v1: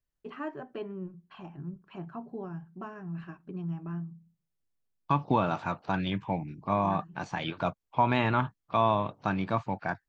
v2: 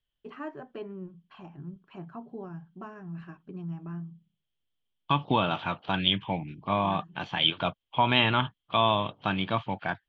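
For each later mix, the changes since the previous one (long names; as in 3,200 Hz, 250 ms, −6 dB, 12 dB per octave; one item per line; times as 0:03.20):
second voice: add low-pass with resonance 3,200 Hz, resonance Q 10
reverb: off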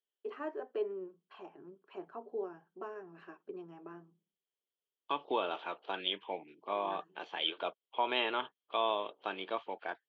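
first voice +6.5 dB
master: add four-pole ladder high-pass 360 Hz, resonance 55%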